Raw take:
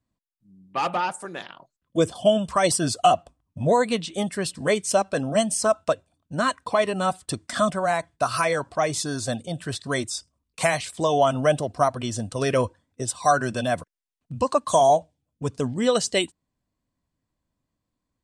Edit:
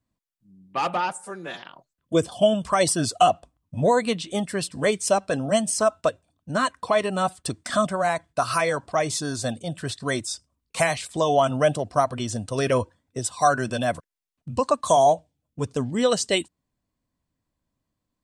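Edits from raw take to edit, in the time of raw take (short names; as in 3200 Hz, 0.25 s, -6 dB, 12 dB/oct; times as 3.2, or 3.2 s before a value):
1.13–1.46 stretch 1.5×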